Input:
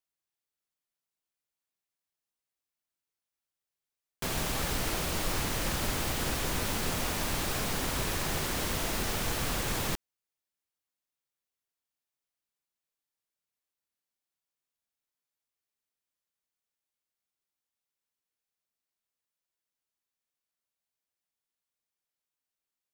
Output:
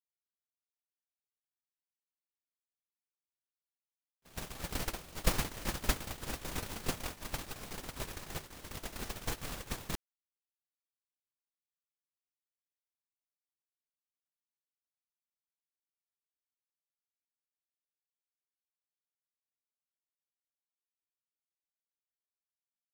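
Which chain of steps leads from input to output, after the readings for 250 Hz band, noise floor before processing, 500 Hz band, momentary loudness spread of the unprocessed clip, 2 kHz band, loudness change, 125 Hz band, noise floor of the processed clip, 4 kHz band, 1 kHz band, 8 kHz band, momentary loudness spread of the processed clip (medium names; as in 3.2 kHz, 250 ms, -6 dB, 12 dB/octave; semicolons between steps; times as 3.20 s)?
-8.0 dB, under -85 dBFS, -8.5 dB, 1 LU, -9.0 dB, -8.5 dB, -7.5 dB, under -85 dBFS, -9.0 dB, -9.0 dB, -9.0 dB, 10 LU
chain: gate -27 dBFS, range -59 dB; trim +10.5 dB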